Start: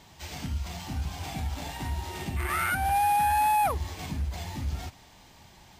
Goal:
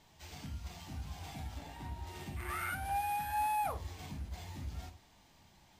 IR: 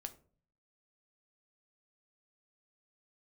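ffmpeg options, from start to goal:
-filter_complex "[0:a]asettb=1/sr,asplit=3[a][b][c];[a]atrim=end=1.584[d];[b]atrim=start=1.58:end=2.07,asetpts=PTS-STARTPTS,afade=t=in:d=0.004:c=qsin,afade=t=out:st=0.486:d=0.004:c=qsin,equalizer=f=11k:t=o:w=2.9:g=-6.5[e];[c]atrim=start=2.066[f];[d][e]acrossfade=d=0.004:c1=hsin:c2=qsin[g];[g][f]acrossfade=d=0.004:c1=qsin:c2=hsin[h];[1:a]atrim=start_sample=2205,atrim=end_sample=3969,asetrate=36162,aresample=44100[i];[h][i]afir=irnorm=-1:irlink=0,volume=-7.5dB"

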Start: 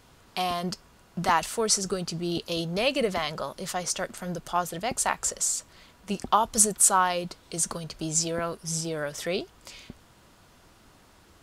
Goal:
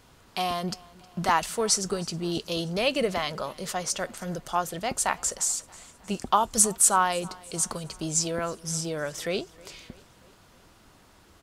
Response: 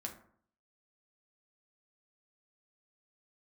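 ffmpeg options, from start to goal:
-af "aecho=1:1:315|630|945|1260:0.0708|0.0396|0.0222|0.0124"

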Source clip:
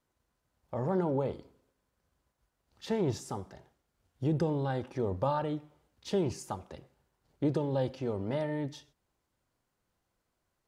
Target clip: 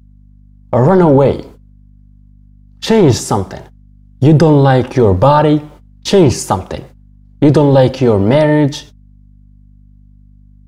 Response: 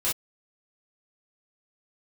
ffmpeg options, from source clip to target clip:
-af "agate=range=-26dB:threshold=-58dB:ratio=16:detection=peak,apsyclip=26dB,aeval=exprs='val(0)+0.0112*(sin(2*PI*50*n/s)+sin(2*PI*2*50*n/s)/2+sin(2*PI*3*50*n/s)/3+sin(2*PI*4*50*n/s)/4+sin(2*PI*5*50*n/s)/5)':c=same,volume=-2dB"

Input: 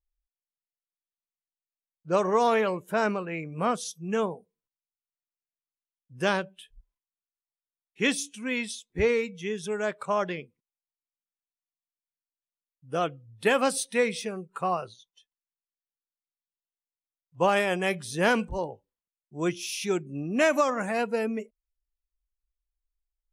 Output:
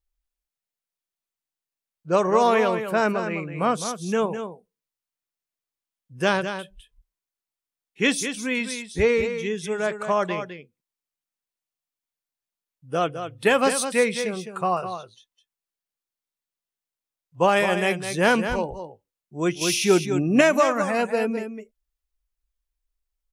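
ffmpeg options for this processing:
-filter_complex "[0:a]aecho=1:1:208:0.355,asettb=1/sr,asplit=3[a][b][c];[a]atrim=end=19.614[d];[b]atrim=start=19.61:end=20.41,asetpts=PTS-STARTPTS,afade=t=in:d=0.004:c=qsin,afade=t=out:st=0.796:d=0.004:c=qsin,acontrast=36[e];[c]atrim=start=20.406[f];[d][e]acrossfade=d=0.004:c1=hsin:c2=qsin[g];[g][f]acrossfade=d=0.004:c1=qsin:c2=hsin,volume=4dB"

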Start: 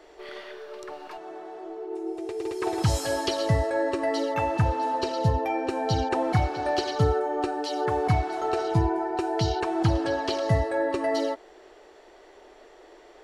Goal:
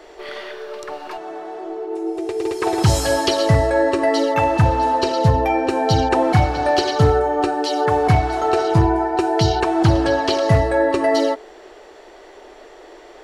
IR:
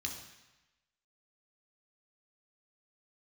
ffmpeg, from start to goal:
-af "bandreject=f=61.71:t=h:w=4,bandreject=f=123.42:t=h:w=4,bandreject=f=185.13:t=h:w=4,bandreject=f=246.84:t=h:w=4,bandreject=f=308.55:t=h:w=4,bandreject=f=370.26:t=h:w=4,bandreject=f=431.97:t=h:w=4,asoftclip=type=hard:threshold=-16dB,volume=9dB"

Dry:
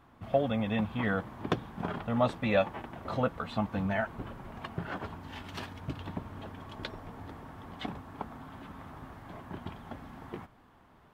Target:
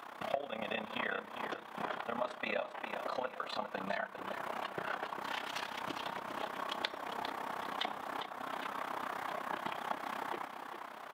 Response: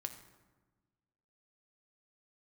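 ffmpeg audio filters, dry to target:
-filter_complex "[0:a]highpass=560,acompressor=threshold=-52dB:ratio=6,tremolo=f=32:d=0.857,aecho=1:1:402|804|1206:0.355|0.106|0.0319,asplit=2[a][b];[1:a]atrim=start_sample=2205,asetrate=74970,aresample=44100[c];[b][c]afir=irnorm=-1:irlink=0,volume=-0.5dB[d];[a][d]amix=inputs=2:normalize=0,volume=15.5dB"

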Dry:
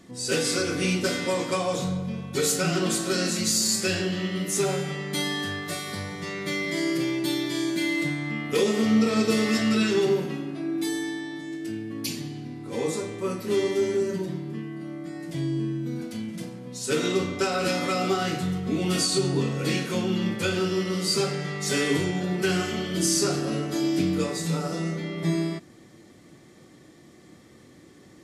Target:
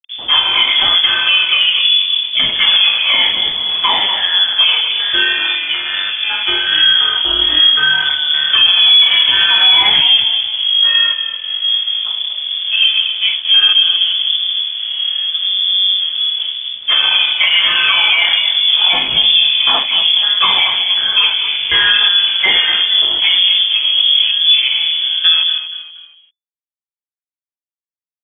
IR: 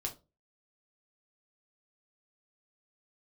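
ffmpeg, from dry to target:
-filter_complex "[0:a]afftfilt=real='re*pow(10,11/40*sin(2*PI*(0.82*log(max(b,1)*sr/1024/100)/log(2)-(1.2)*(pts-256)/sr)))':imag='im*pow(10,11/40*sin(2*PI*(0.82*log(max(b,1)*sr/1024/100)/log(2)-(1.2)*(pts-256)/sr)))':win_size=1024:overlap=0.75,afwtdn=0.0224,equalizer=f=1k:t=o:w=0.23:g=13,asplit=2[a][b];[b]acompressor=threshold=-32dB:ratio=6,volume=-2dB[c];[a][c]amix=inputs=2:normalize=0,flanger=delay=7.9:depth=7.9:regen=-62:speed=0.79:shape=triangular,aeval=exprs='sgn(val(0))*max(abs(val(0))-0.00473,0)':c=same,asplit=4[d][e][f][g];[e]adelay=237,afreqshift=39,volume=-11.5dB[h];[f]adelay=474,afreqshift=78,volume=-21.1dB[i];[g]adelay=711,afreqshift=117,volume=-30.8dB[j];[d][h][i][j]amix=inputs=4:normalize=0,lowpass=f=3.1k:t=q:w=0.5098,lowpass=f=3.1k:t=q:w=0.6013,lowpass=f=3.1k:t=q:w=0.9,lowpass=f=3.1k:t=q:w=2.563,afreqshift=-3600,alimiter=level_in=17dB:limit=-1dB:release=50:level=0:latency=1,volume=-1dB"

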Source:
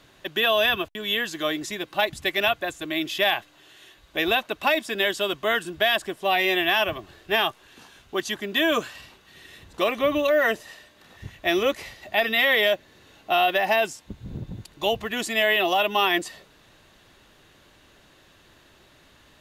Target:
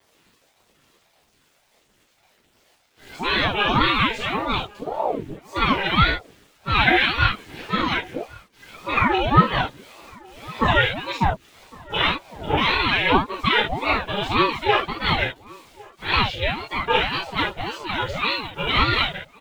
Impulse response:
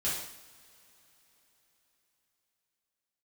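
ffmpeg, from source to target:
-filter_complex "[0:a]areverse,lowpass=3.2k,bandreject=f=820:w=12,aeval=exprs='val(0)*gte(abs(val(0)),0.00355)':c=same,aphaser=in_gain=1:out_gain=1:delay=1.5:decay=0.55:speed=1.6:type=triangular,asplit=2[a][b];[b]adelay=1108,volume=-23dB,highshelf=f=4k:g=-24.9[c];[a][c]amix=inputs=2:normalize=0[d];[1:a]atrim=start_sample=2205,atrim=end_sample=3969[e];[d][e]afir=irnorm=-1:irlink=0,aeval=exprs='val(0)*sin(2*PI*480*n/s+480*0.6/1.8*sin(2*PI*1.8*n/s))':c=same"

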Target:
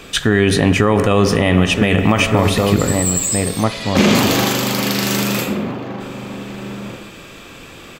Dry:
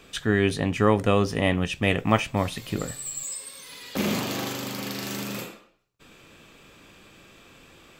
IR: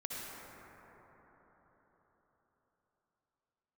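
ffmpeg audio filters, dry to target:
-filter_complex "[0:a]asplit=3[a][b][c];[a]afade=t=out:st=3.63:d=0.02[d];[b]lowpass=7.5k,afade=t=in:st=3.63:d=0.02,afade=t=out:st=4.14:d=0.02[e];[c]afade=t=in:st=4.14:d=0.02[f];[d][e][f]amix=inputs=3:normalize=0,asplit=2[g][h];[h]adelay=1516,volume=-9dB,highshelf=f=4k:g=-34.1[i];[g][i]amix=inputs=2:normalize=0,asplit=2[j][k];[1:a]atrim=start_sample=2205,asetrate=74970,aresample=44100[l];[k][l]afir=irnorm=-1:irlink=0,volume=-9dB[m];[j][m]amix=inputs=2:normalize=0,alimiter=level_in=14dB:limit=-1dB:release=50:level=0:latency=1,volume=-1dB"

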